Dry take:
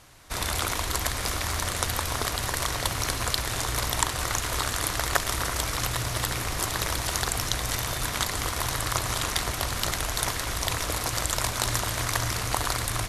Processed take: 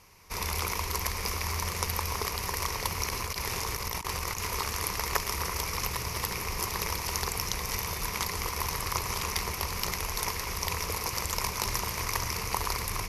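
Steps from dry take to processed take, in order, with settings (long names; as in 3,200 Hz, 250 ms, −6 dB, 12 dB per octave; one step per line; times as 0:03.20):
EQ curve with evenly spaced ripples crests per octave 0.82, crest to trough 10 dB
0:03.09–0:04.47: compressor whose output falls as the input rises −28 dBFS, ratio −0.5
level −5 dB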